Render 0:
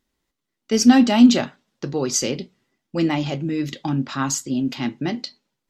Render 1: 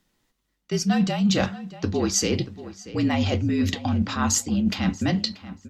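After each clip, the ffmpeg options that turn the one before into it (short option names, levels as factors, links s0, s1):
-filter_complex "[0:a]areverse,acompressor=threshold=0.0562:ratio=8,areverse,afreqshift=-49,asplit=2[s0][s1];[s1]adelay=634,lowpass=f=3300:p=1,volume=0.178,asplit=2[s2][s3];[s3]adelay=634,lowpass=f=3300:p=1,volume=0.31,asplit=2[s4][s5];[s5]adelay=634,lowpass=f=3300:p=1,volume=0.31[s6];[s0][s2][s4][s6]amix=inputs=4:normalize=0,volume=2"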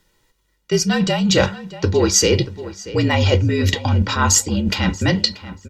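-af "aecho=1:1:2.1:0.59,volume=2.24"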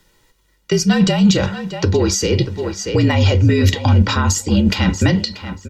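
-filter_complex "[0:a]dynaudnorm=f=270:g=5:m=3.76,alimiter=limit=0.335:level=0:latency=1:release=164,acrossover=split=320[s0][s1];[s1]acompressor=threshold=0.0708:ratio=5[s2];[s0][s2]amix=inputs=2:normalize=0,volume=1.88"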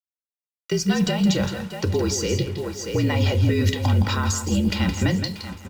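-af "acrusher=bits=5:mix=0:aa=0.5,aecho=1:1:167:0.355,volume=0.447"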